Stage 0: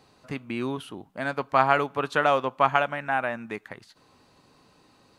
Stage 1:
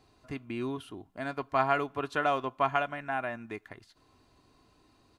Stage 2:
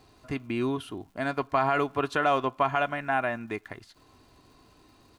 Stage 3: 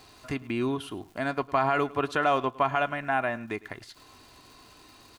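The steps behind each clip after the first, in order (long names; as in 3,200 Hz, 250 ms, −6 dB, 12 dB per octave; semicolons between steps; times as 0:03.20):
low-shelf EQ 130 Hz +11 dB; comb filter 2.9 ms, depth 45%; level −7.5 dB
brickwall limiter −19 dBFS, peak gain reduction 7 dB; surface crackle 280 per second −61 dBFS; level +6 dB
single-tap delay 105 ms −21 dB; one half of a high-frequency compander encoder only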